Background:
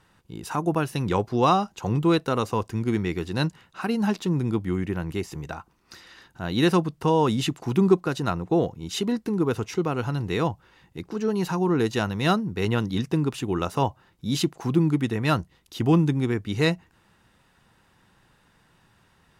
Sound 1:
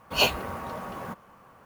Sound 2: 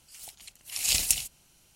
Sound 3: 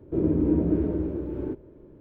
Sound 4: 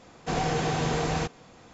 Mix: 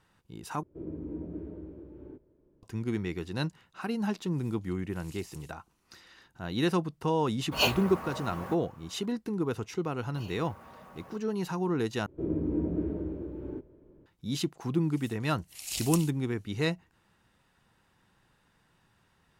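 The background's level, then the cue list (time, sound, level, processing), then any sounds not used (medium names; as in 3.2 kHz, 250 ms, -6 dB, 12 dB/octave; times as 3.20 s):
background -7 dB
0.63 s: replace with 3 -16 dB
4.24 s: add 2 -18 dB + compression 2:1, threshold -41 dBFS
7.41 s: add 1 -3.5 dB
10.04 s: add 1 -14.5 dB + compression 16:1, threshold -31 dBFS
12.06 s: replace with 3 -7.5 dB
14.83 s: add 2 -10.5 dB
not used: 4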